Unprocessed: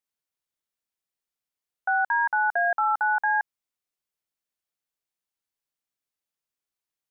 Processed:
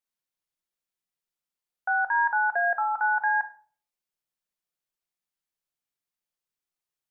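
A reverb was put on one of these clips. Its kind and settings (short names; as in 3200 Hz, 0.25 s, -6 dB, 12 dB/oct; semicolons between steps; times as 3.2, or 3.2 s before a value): shoebox room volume 430 m³, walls furnished, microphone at 0.92 m; gain -2.5 dB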